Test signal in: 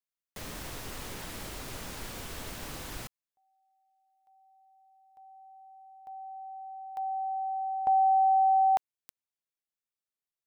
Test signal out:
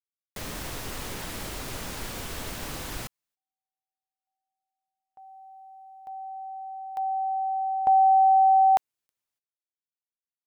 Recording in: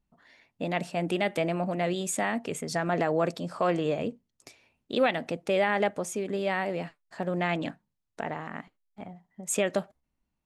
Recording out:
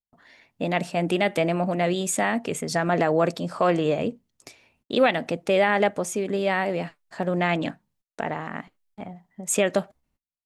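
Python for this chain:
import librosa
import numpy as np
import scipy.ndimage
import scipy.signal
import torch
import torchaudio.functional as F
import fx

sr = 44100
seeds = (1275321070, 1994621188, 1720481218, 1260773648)

y = fx.gate_hold(x, sr, open_db=-52.0, close_db=-55.0, hold_ms=252.0, range_db=-31, attack_ms=0.74, release_ms=29.0)
y = y * librosa.db_to_amplitude(5.0)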